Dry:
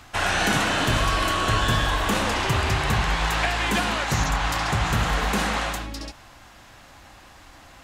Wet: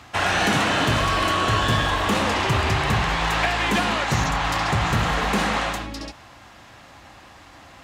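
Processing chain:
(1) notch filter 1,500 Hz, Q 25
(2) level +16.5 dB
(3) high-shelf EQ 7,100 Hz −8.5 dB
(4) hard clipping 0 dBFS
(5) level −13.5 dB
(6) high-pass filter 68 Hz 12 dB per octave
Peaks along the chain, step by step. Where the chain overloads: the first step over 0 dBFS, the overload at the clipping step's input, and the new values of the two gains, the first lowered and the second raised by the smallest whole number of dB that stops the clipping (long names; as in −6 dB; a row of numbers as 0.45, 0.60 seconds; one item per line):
−9.0, +7.5, +7.0, 0.0, −13.5, −8.5 dBFS
step 2, 7.0 dB
step 2 +9.5 dB, step 5 −6.5 dB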